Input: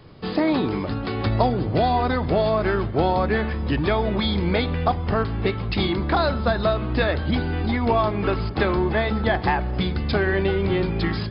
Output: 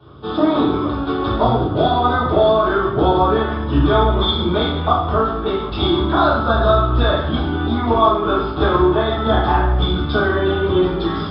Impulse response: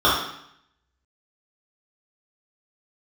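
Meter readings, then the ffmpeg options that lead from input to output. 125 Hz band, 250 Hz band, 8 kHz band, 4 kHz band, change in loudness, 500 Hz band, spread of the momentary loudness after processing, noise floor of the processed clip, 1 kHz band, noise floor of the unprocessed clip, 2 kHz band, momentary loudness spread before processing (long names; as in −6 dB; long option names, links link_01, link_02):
+3.0 dB, +5.0 dB, can't be measured, +7.0 dB, +5.5 dB, +6.0 dB, 5 LU, −24 dBFS, +7.0 dB, −29 dBFS, +2.5 dB, 4 LU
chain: -filter_complex "[1:a]atrim=start_sample=2205[link_01];[0:a][link_01]afir=irnorm=-1:irlink=0,volume=-17dB"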